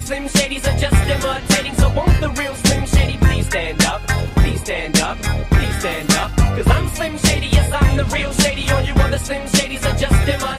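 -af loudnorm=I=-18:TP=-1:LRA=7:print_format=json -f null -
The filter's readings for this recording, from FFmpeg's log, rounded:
"input_i" : "-17.0",
"input_tp" : "-3.3",
"input_lra" : "1.2",
"input_thresh" : "-27.0",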